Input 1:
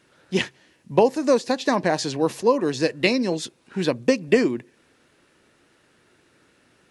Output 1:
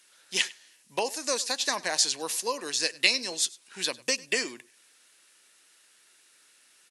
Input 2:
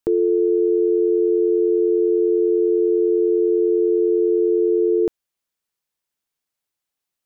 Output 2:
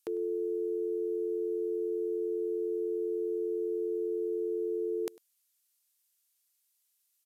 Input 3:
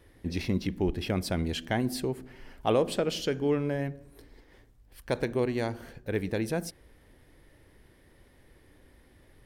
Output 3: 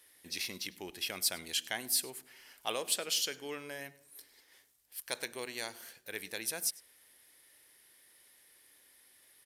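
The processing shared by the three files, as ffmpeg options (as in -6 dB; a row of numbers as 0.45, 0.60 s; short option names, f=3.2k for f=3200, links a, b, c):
-af "aderivative,aecho=1:1:100:0.0794,aresample=32000,aresample=44100,volume=9dB"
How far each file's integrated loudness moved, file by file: -5.0, -15.5, -5.0 LU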